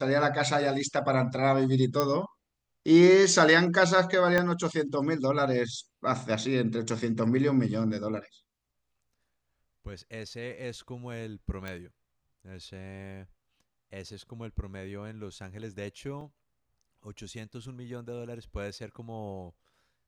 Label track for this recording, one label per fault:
2.000000	2.000000	click −12 dBFS
4.380000	4.380000	click −12 dBFS
11.680000	11.680000	click −22 dBFS
16.210000	16.210000	drop-out 2.4 ms

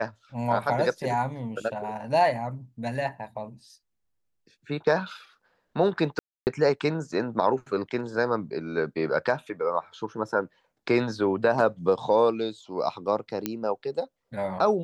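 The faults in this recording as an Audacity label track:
6.190000	6.470000	drop-out 279 ms
13.460000	13.460000	click −12 dBFS

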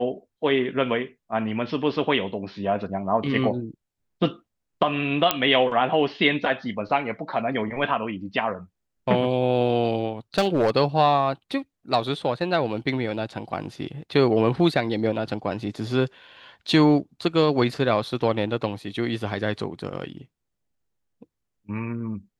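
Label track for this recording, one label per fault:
5.310000	5.310000	click −2 dBFS
10.380000	10.700000	clipping −15 dBFS

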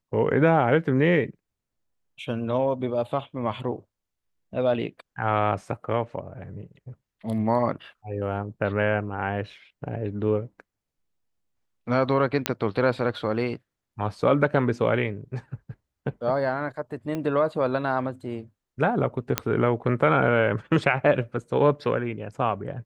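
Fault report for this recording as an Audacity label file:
12.460000	12.460000	click −5 dBFS
17.150000	17.150000	click −18 dBFS
19.380000	19.380000	click −5 dBFS

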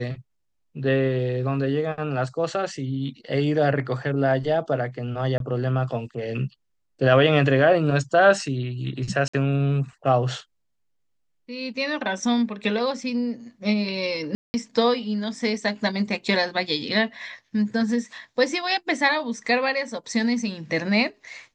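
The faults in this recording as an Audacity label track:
5.380000	5.400000	drop-out 22 ms
9.280000	9.340000	drop-out 55 ms
14.350000	14.540000	drop-out 190 ms

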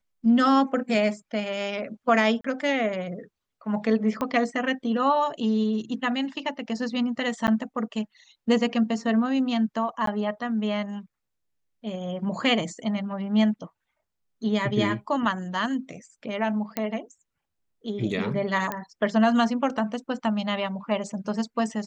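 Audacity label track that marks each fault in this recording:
2.410000	2.440000	drop-out 34 ms
4.210000	4.210000	click −15 dBFS
7.470000	7.480000	drop-out 9.6 ms
10.060000	10.070000	drop-out 13 ms
16.770000	16.770000	click −12 dBFS
18.720000	18.720000	click −14 dBFS

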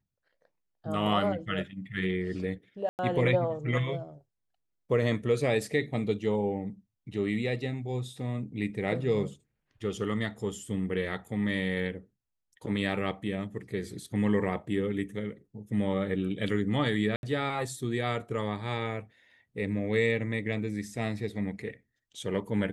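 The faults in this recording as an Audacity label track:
2.890000	2.990000	drop-out 99 ms
17.160000	17.230000	drop-out 71 ms

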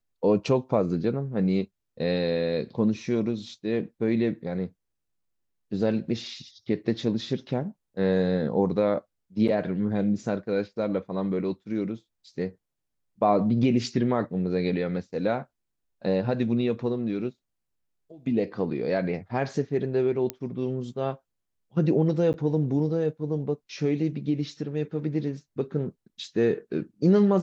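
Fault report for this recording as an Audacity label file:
20.300000	20.300000	click −13 dBFS
22.330000	22.340000	drop-out 9.6 ms

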